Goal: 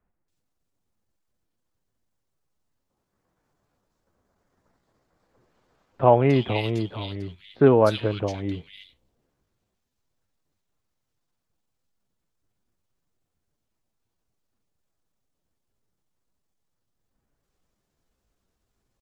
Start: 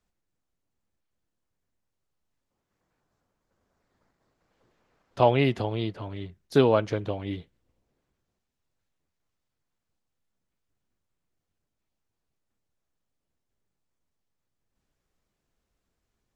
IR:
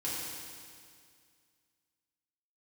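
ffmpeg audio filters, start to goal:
-filter_complex "[0:a]acrossover=split=2200[s0][s1];[s1]adelay=250[s2];[s0][s2]amix=inputs=2:normalize=0,atempo=0.86,volume=1.5"

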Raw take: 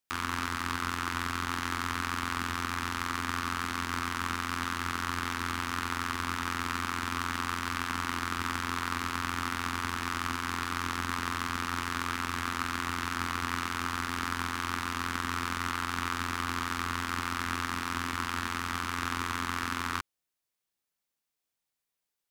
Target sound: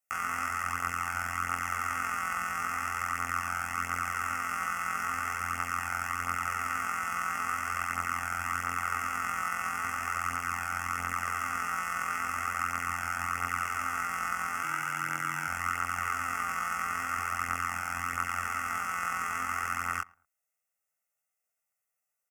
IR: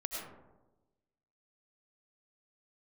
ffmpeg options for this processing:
-filter_complex "[0:a]asuperstop=centerf=3900:order=4:qfactor=1.2,acontrast=54,lowshelf=f=290:g=-12,aecho=1:1:1.5:0.93,asplit=2[s0][s1];[s1]adelay=110,lowpass=f=1400:p=1,volume=0.075,asplit=2[s2][s3];[s3]adelay=110,lowpass=f=1400:p=1,volume=0.28[s4];[s0][s2][s4]amix=inputs=3:normalize=0,flanger=delay=17.5:depth=6.9:speed=0.42,asettb=1/sr,asplit=3[s5][s6][s7];[s5]atrim=end=14.634[s8];[s6]atrim=start=14.63:end=15.48,asetpts=PTS-STARTPTS,afade=t=in:d=0.004:c=qsin,afade=t=out:st=0.846:d=0.004:c=qsin,afreqshift=64[s9];[s7]atrim=start=15.476[s10];[s8][s9]acrossfade=d=0.004:c1=hsin:c2=qsin[s11];[s11][s10]acrossfade=d=0.004:c1=qsin:c2=hsin,volume=0.668"

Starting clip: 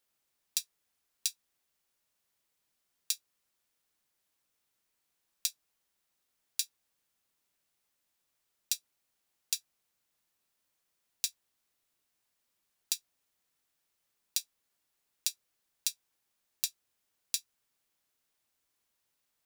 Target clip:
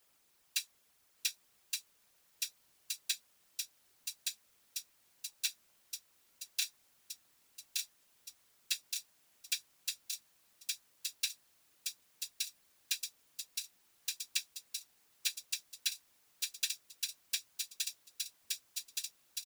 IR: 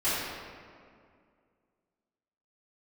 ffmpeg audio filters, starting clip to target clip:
-filter_complex "[0:a]afftfilt=real='hypot(re,im)*cos(2*PI*random(0))':imag='hypot(re,im)*sin(2*PI*random(1))':win_size=512:overlap=0.75,aecho=1:1:1170|2340|3510|4680|5850|7020|8190|9360:0.531|0.319|0.191|0.115|0.0688|0.0413|0.0248|0.0149,acrossover=split=2900[s0][s1];[s1]acompressor=threshold=0.00447:ratio=4:attack=1:release=60[s2];[s0][s2]amix=inputs=2:normalize=0,volume=5.62"

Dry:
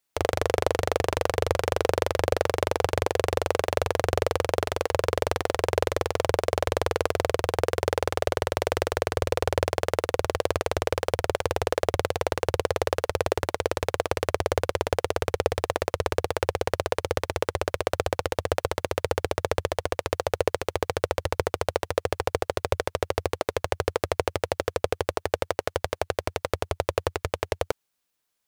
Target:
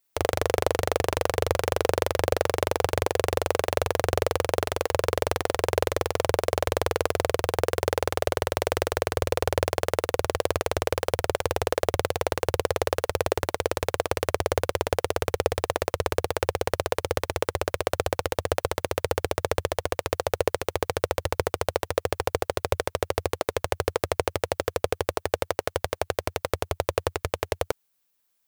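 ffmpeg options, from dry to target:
-af "highshelf=f=12000:g=10.5"

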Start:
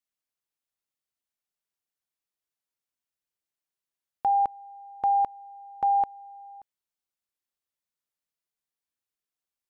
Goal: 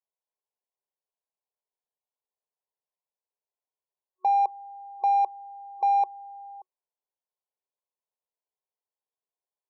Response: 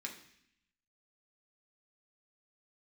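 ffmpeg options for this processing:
-filter_complex "[0:a]afftfilt=real='re*between(b*sr/4096,370,1100)':imag='im*between(b*sr/4096,370,1100)':win_size=4096:overlap=0.75,asplit=2[s0][s1];[s1]asoftclip=type=tanh:threshold=0.0282,volume=0.335[s2];[s0][s2]amix=inputs=2:normalize=0"

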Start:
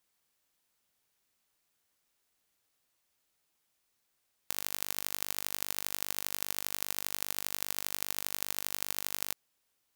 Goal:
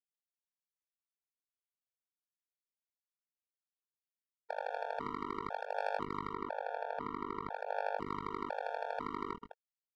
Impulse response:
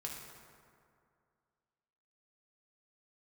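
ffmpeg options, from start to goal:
-filter_complex "[0:a]asplit=2[s0][s1];[s1]aecho=0:1:40.82|131.2|207:0.282|0.355|0.355[s2];[s0][s2]amix=inputs=2:normalize=0,flanger=delay=20:depth=4.4:speed=0.51,acrossover=split=1600[s3][s4];[s3]highpass=160[s5];[s4]acompressor=threshold=0.00224:ratio=16[s6];[s5][s6]amix=inputs=2:normalize=0,equalizer=f=730:t=o:w=1.6:g=6,aeval=exprs='val(0)*gte(abs(val(0)),0.00631)':c=same,adynamicsmooth=sensitivity=5:basefreq=720,asettb=1/sr,asplit=3[s7][s8][s9];[s7]atrim=end=6.334[s10];[s8]atrim=start=6.33:end=7.97,asetpts=PTS-STARTPTS,afade=t=in:d=0.004:c=qsin,afade=t=out:st=1.636:d=0.004:c=qsin,highshelf=f=3800:g=-8.5[s11];[s9]atrim=start=7.966[s12];[s10][s11]acrossfade=d=0.004:c1=hsin:c2=qsin[s13];[s13][s12]acrossfade=d=0.004:c1=qsin:c2=hsin,afftfilt=real='re*gt(sin(2*PI*1*pts/sr)*(1-2*mod(floor(b*sr/1024/460),2)),0)':imag='im*gt(sin(2*PI*1*pts/sr)*(1-2*mod(floor(b*sr/1024/460),2)),0)':win_size=1024:overlap=0.75,volume=5.01"

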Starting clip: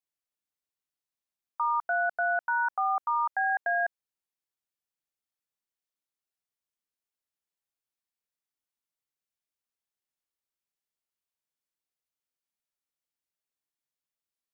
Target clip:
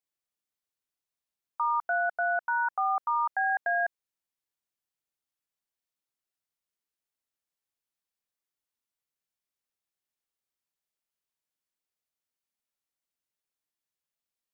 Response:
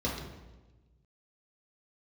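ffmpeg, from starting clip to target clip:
-filter_complex "[0:a]asettb=1/sr,asplit=3[s0][s1][s2];[s0]atrim=end=1.984[s3];[s1]atrim=start=1.98:end=2.76,asetpts=PTS-STARTPTS,afade=t=in:d=0.004:c=qsin,afade=t=out:st=0.776:d=0.004:c=qsin,bandreject=f=1700:w=7.5[s4];[s2]atrim=start=2.756[s5];[s3][s4]acrossfade=d=0.004:c1=hsin:c2=qsin[s6];[s6][s5]acrossfade=d=0.004:c1=qsin:c2=hsin"

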